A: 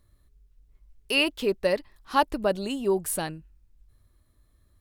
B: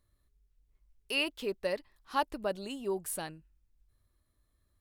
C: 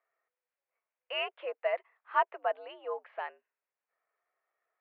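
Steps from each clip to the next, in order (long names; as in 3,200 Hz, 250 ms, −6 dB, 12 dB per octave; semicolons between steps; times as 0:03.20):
low-shelf EQ 370 Hz −4 dB; level −7.5 dB
single-sideband voice off tune +83 Hz 470–2,400 Hz; level +3.5 dB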